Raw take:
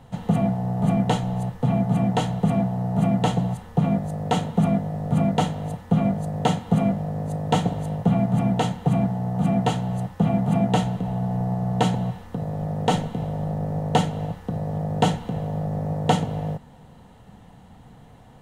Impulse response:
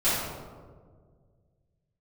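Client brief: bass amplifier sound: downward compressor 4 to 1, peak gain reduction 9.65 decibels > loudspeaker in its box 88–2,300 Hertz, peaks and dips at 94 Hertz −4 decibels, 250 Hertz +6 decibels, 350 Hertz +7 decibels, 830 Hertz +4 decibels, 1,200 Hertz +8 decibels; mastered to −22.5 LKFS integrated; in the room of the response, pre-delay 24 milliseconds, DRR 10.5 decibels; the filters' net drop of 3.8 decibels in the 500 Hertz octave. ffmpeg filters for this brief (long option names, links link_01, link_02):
-filter_complex "[0:a]equalizer=frequency=500:width_type=o:gain=-8,asplit=2[link_01][link_02];[1:a]atrim=start_sample=2205,adelay=24[link_03];[link_02][link_03]afir=irnorm=-1:irlink=0,volume=-24.5dB[link_04];[link_01][link_04]amix=inputs=2:normalize=0,acompressor=threshold=-26dB:ratio=4,highpass=frequency=88:width=0.5412,highpass=frequency=88:width=1.3066,equalizer=frequency=94:width_type=q:width=4:gain=-4,equalizer=frequency=250:width_type=q:width=4:gain=6,equalizer=frequency=350:width_type=q:width=4:gain=7,equalizer=frequency=830:width_type=q:width=4:gain=4,equalizer=frequency=1200:width_type=q:width=4:gain=8,lowpass=frequency=2300:width=0.5412,lowpass=frequency=2300:width=1.3066,volume=6.5dB"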